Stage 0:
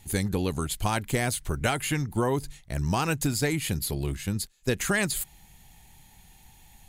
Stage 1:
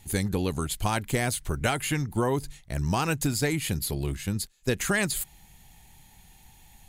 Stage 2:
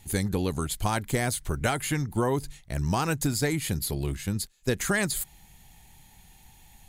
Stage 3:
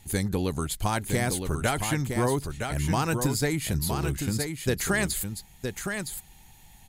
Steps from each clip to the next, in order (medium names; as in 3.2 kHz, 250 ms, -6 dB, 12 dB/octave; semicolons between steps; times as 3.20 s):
no audible change
dynamic bell 2.7 kHz, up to -5 dB, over -47 dBFS, Q 3.4
delay 964 ms -6 dB